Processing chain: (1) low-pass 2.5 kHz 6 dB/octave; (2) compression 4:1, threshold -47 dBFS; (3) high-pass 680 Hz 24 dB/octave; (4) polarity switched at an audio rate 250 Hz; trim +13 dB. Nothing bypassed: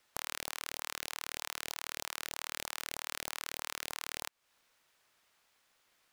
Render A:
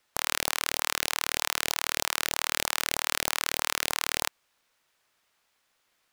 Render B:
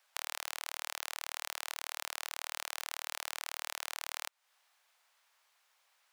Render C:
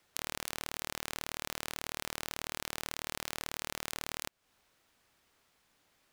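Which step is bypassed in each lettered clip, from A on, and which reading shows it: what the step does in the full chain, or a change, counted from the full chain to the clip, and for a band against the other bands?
2, mean gain reduction 11.5 dB; 4, 500 Hz band -3.5 dB; 3, 125 Hz band +8.5 dB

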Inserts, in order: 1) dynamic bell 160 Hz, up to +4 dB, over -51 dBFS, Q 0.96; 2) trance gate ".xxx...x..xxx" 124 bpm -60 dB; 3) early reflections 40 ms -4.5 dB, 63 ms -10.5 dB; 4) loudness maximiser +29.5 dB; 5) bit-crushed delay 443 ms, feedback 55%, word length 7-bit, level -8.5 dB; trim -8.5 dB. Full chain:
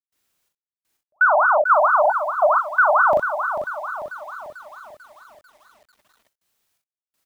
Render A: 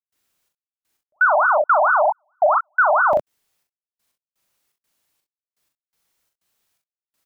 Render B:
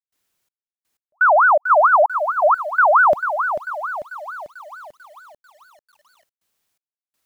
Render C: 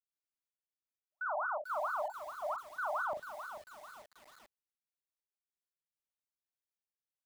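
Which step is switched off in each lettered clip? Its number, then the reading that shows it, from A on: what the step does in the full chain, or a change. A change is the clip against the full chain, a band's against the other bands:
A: 5, crest factor change -2.0 dB; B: 3, crest factor change -2.0 dB; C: 4, loudness change -20.5 LU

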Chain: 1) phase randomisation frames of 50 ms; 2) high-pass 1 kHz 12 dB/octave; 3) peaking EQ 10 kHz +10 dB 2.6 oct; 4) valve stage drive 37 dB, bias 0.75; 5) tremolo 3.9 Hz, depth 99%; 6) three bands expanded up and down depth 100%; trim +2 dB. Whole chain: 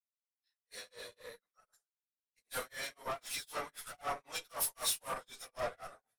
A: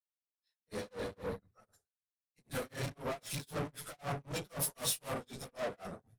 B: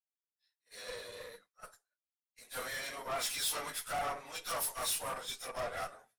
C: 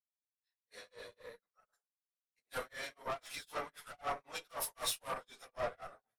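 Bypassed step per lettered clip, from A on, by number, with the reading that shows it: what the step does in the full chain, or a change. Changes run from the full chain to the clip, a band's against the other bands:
2, 125 Hz band +18.0 dB; 5, loudness change +2.0 LU; 3, 8 kHz band -5.5 dB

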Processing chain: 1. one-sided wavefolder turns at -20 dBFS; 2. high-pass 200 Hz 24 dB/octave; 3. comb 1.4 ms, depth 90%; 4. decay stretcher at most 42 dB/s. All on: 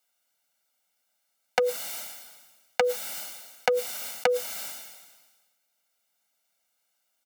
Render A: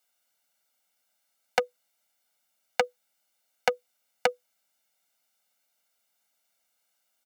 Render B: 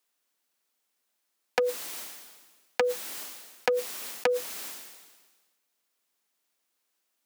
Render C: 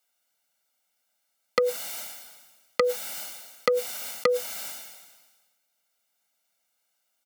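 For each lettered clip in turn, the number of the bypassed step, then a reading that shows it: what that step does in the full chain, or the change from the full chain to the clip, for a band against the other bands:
4, crest factor change +4.0 dB; 3, 250 Hz band +4.5 dB; 1, crest factor change -2.5 dB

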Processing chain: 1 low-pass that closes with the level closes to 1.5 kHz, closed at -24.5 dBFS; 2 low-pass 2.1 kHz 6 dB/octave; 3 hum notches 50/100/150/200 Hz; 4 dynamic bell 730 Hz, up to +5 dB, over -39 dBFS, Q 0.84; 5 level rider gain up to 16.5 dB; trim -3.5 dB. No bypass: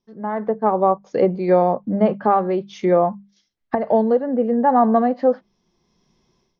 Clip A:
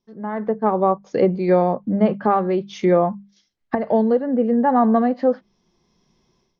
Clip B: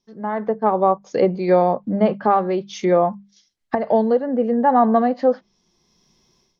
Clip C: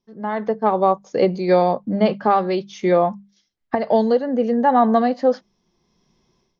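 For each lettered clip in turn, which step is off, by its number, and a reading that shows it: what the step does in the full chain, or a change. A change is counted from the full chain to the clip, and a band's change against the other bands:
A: 4, momentary loudness spread change +2 LU; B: 2, 2 kHz band +2.0 dB; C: 1, 2 kHz band +4.0 dB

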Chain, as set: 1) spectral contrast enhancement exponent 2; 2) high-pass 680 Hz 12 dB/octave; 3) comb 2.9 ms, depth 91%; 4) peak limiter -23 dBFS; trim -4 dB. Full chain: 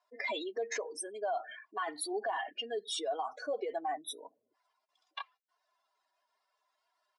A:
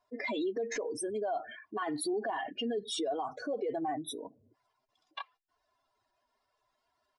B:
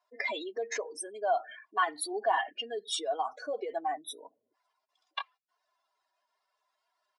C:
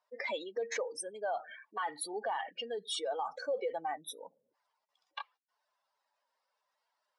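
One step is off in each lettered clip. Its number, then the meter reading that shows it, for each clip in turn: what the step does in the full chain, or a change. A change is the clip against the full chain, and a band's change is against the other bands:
2, 250 Hz band +10.5 dB; 4, crest factor change +7.0 dB; 3, 250 Hz band -3.5 dB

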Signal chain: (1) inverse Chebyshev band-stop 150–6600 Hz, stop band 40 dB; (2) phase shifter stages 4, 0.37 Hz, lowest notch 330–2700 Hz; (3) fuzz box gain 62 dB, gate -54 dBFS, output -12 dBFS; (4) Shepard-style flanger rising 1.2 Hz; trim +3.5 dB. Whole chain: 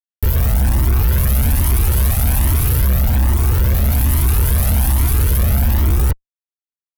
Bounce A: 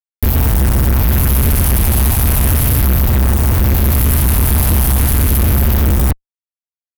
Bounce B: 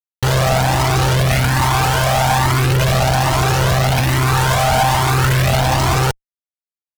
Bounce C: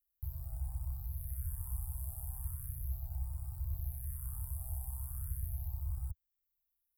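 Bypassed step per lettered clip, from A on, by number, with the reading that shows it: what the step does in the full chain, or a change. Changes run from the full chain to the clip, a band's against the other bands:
4, 125 Hz band -2.5 dB; 1, 125 Hz band -11.0 dB; 3, distortion -4 dB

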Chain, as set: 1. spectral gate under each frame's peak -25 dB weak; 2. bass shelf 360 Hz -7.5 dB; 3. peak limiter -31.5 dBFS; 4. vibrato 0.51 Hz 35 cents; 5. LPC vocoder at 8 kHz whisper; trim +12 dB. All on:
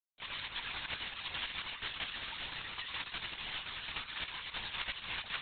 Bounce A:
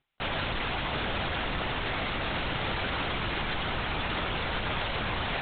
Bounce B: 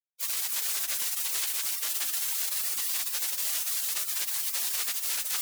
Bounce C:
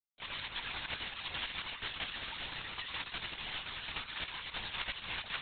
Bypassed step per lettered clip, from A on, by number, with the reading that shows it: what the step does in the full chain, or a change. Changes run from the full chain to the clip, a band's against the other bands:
1, 4 kHz band -16.0 dB; 5, 4 kHz band +4.5 dB; 2, 4 kHz band -2.0 dB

